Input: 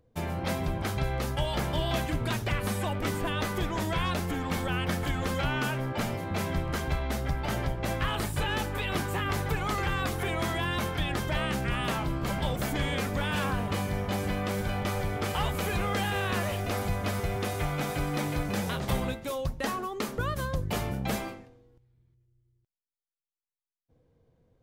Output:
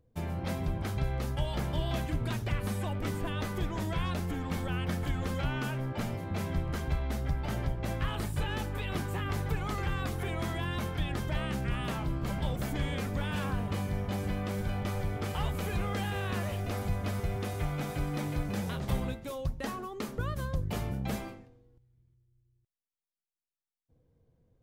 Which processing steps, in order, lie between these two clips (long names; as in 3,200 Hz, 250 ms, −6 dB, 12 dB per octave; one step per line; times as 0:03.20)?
low-shelf EQ 280 Hz +7 dB
level −7 dB